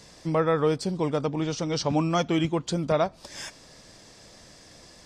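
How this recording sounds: noise floor -52 dBFS; spectral tilt -5.5 dB/oct

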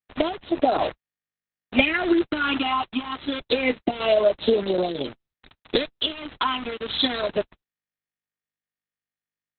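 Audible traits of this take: phasing stages 8, 0.27 Hz, lowest notch 560–2300 Hz; a quantiser's noise floor 6-bit, dither none; random-step tremolo; Opus

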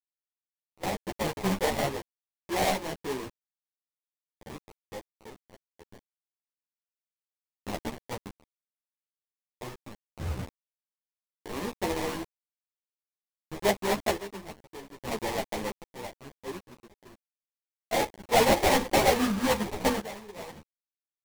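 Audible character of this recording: a quantiser's noise floor 6-bit, dither none; random-step tremolo 1.2 Hz, depth 90%; aliases and images of a low sample rate 1400 Hz, jitter 20%; a shimmering, thickened sound

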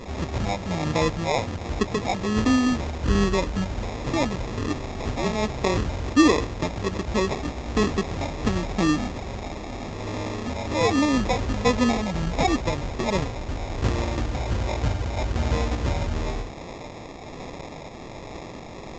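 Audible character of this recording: a quantiser's noise floor 6-bit, dither triangular; phasing stages 4, 1.3 Hz, lowest notch 390–4200 Hz; aliases and images of a low sample rate 1500 Hz, jitter 0%; µ-law

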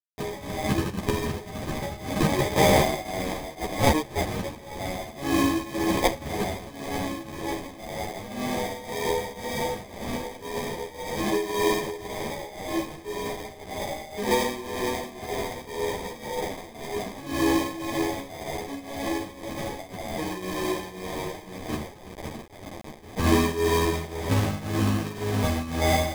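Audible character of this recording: a quantiser's noise floor 6-bit, dither none; tremolo triangle 1.9 Hz, depth 85%; aliases and images of a low sample rate 1400 Hz, jitter 0%; a shimmering, thickened sound

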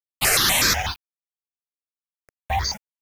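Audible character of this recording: a quantiser's noise floor 8-bit, dither none; notches that jump at a steady rate 8.1 Hz 790–2900 Hz

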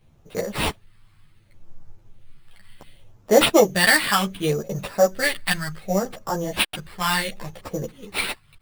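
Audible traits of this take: phasing stages 2, 0.68 Hz, lowest notch 490–2500 Hz; aliases and images of a low sample rate 6400 Hz, jitter 0%; a shimmering, thickened sound

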